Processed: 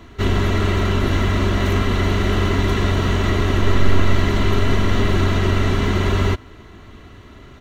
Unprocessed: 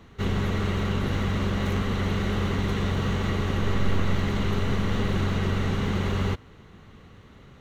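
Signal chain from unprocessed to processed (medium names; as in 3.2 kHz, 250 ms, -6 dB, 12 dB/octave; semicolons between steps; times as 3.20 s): comb 3 ms, depth 55%; trim +7.5 dB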